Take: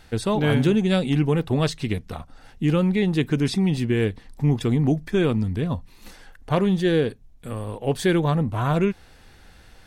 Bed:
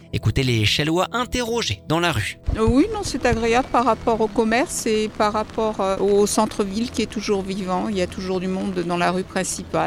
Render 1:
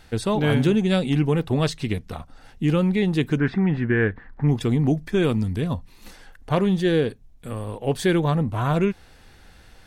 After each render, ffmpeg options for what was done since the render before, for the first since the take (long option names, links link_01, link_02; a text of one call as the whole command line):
ffmpeg -i in.wav -filter_complex "[0:a]asplit=3[link_01][link_02][link_03];[link_01]afade=type=out:start_time=3.37:duration=0.02[link_04];[link_02]lowpass=frequency=1600:width_type=q:width=4.1,afade=type=in:start_time=3.37:duration=0.02,afade=type=out:start_time=4.47:duration=0.02[link_05];[link_03]afade=type=in:start_time=4.47:duration=0.02[link_06];[link_04][link_05][link_06]amix=inputs=3:normalize=0,asettb=1/sr,asplit=3[link_07][link_08][link_09];[link_07]atrim=end=5.224[link_10];[link_08]atrim=start=5.22:end=5.74,asetpts=PTS-STARTPTS,afade=type=in:duration=0.004:curve=qsin,afade=type=out:start_time=0.516:duration=0.004:curve=qsin,highshelf=frequency=5000:gain=7[link_11];[link_09]atrim=start=5.736[link_12];[link_10][link_11]acrossfade=duration=0.004:curve1=hsin:curve2=qsin[link_13];[link_13][link_12]acrossfade=duration=0.004:curve1=qsin:curve2=hsin" out.wav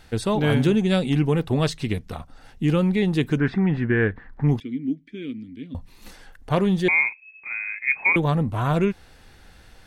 ffmpeg -i in.wav -filter_complex "[0:a]asettb=1/sr,asplit=3[link_01][link_02][link_03];[link_01]atrim=end=4.604[link_04];[link_02]atrim=start=4.6:end=5.75,asetpts=PTS-STARTPTS,afade=type=in:duration=0.004:curve=qsin,afade=type=out:start_time=1.146:duration=0.004:curve=qsin,asplit=3[link_05][link_06][link_07];[link_05]bandpass=frequency=270:width_type=q:width=8,volume=0dB[link_08];[link_06]bandpass=frequency=2290:width_type=q:width=8,volume=-6dB[link_09];[link_07]bandpass=frequency=3010:width_type=q:width=8,volume=-9dB[link_10];[link_08][link_09][link_10]amix=inputs=3:normalize=0[link_11];[link_03]atrim=start=5.746[link_12];[link_04][link_11]acrossfade=duration=0.004:curve1=hsin:curve2=qsin[link_13];[link_13][link_12]acrossfade=duration=0.004:curve1=qsin:curve2=hsin,asettb=1/sr,asplit=3[link_14][link_15][link_16];[link_14]atrim=end=6.884[link_17];[link_15]atrim=start=6.88:end=8.16,asetpts=PTS-STARTPTS,afade=type=in:duration=0.004:curve=qsin,afade=type=out:start_time=1.276:duration=0.004:curve=qsin,lowpass=frequency=2200:width_type=q:width=0.5098,lowpass=frequency=2200:width_type=q:width=0.6013,lowpass=frequency=2200:width_type=q:width=0.9,lowpass=frequency=2200:width_type=q:width=2.563,afreqshift=-2600[link_18];[link_16]atrim=start=8.156[link_19];[link_17][link_18]acrossfade=duration=0.004:curve1=hsin:curve2=qsin[link_20];[link_20][link_19]acrossfade=duration=0.004:curve1=qsin:curve2=hsin" out.wav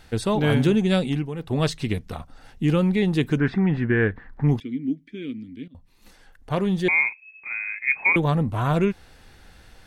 ffmpeg -i in.wav -filter_complex "[0:a]asplit=4[link_01][link_02][link_03][link_04];[link_01]atrim=end=1.29,asetpts=PTS-STARTPTS,afade=type=out:start_time=1.01:duration=0.28:silence=0.281838[link_05];[link_02]atrim=start=1.29:end=1.36,asetpts=PTS-STARTPTS,volume=-11dB[link_06];[link_03]atrim=start=1.36:end=5.68,asetpts=PTS-STARTPTS,afade=type=in:duration=0.28:silence=0.281838,afade=type=out:start_time=4.316:duration=0.004:curve=hsin:silence=0.149624[link_07];[link_04]atrim=start=5.68,asetpts=PTS-STARTPTS,afade=type=in:duration=1.4:silence=0.149624[link_08];[link_05][link_06][link_07][link_08]concat=n=4:v=0:a=1" out.wav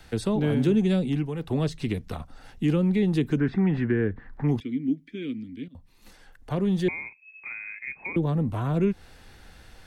ffmpeg -i in.wav -filter_complex "[0:a]acrossover=split=440[link_01][link_02];[link_02]acompressor=threshold=-35dB:ratio=5[link_03];[link_01][link_03]amix=inputs=2:normalize=0,acrossover=split=180|500|3800[link_04][link_05][link_06][link_07];[link_04]alimiter=level_in=3.5dB:limit=-24dB:level=0:latency=1,volume=-3.5dB[link_08];[link_08][link_05][link_06][link_07]amix=inputs=4:normalize=0" out.wav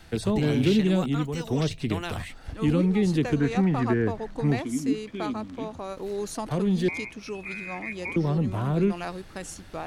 ffmpeg -i in.wav -i bed.wav -filter_complex "[1:a]volume=-14.5dB[link_01];[0:a][link_01]amix=inputs=2:normalize=0" out.wav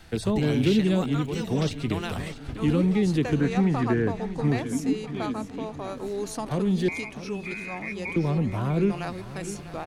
ffmpeg -i in.wav -af "aecho=1:1:649|1298|1947|2596|3245:0.211|0.112|0.0594|0.0315|0.0167" out.wav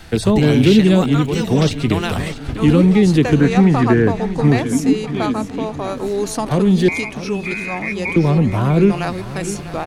ffmpeg -i in.wav -af "volume=10.5dB,alimiter=limit=-1dB:level=0:latency=1" out.wav